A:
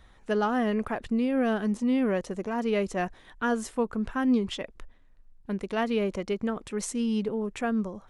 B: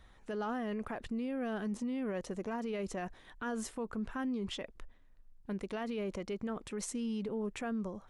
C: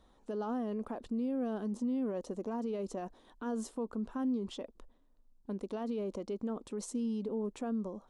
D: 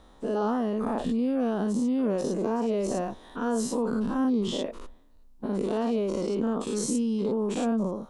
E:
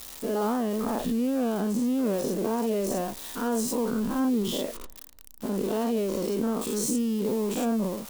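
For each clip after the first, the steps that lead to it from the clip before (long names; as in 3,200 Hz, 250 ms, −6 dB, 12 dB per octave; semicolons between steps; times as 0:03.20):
brickwall limiter −26 dBFS, peak gain reduction 10.5 dB; level −4 dB
octave-band graphic EQ 125/250/500/1,000/2,000/4,000/8,000 Hz −5/+10/+6/+6/−9/+4/+3 dB; level −7 dB
every bin's largest magnitude spread in time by 120 ms; level +6 dB
spike at every zero crossing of −28 dBFS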